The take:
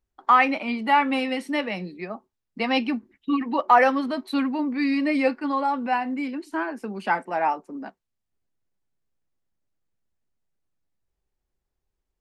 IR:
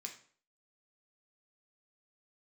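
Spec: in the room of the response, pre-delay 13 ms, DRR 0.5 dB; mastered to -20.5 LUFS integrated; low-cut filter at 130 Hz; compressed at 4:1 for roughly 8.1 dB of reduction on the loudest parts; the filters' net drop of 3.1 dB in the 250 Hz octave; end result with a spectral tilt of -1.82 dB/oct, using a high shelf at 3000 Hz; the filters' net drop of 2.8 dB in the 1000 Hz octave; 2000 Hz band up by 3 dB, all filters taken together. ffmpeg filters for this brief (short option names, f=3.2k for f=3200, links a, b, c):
-filter_complex "[0:a]highpass=130,equalizer=f=250:t=o:g=-3,equalizer=f=1k:t=o:g=-4.5,equalizer=f=2k:t=o:g=7,highshelf=f=3k:g=-6,acompressor=threshold=-23dB:ratio=4,asplit=2[a][b];[1:a]atrim=start_sample=2205,adelay=13[c];[b][c]afir=irnorm=-1:irlink=0,volume=3dB[d];[a][d]amix=inputs=2:normalize=0,volume=6dB"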